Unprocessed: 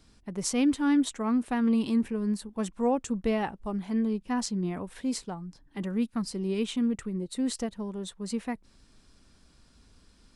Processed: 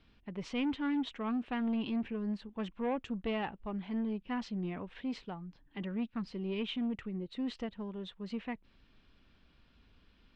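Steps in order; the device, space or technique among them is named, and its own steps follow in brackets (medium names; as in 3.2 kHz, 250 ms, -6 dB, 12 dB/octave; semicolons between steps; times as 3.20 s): overdriven synthesiser ladder filter (saturation -23 dBFS, distortion -15 dB; four-pole ladder low-pass 3.5 kHz, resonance 45%); trim +3.5 dB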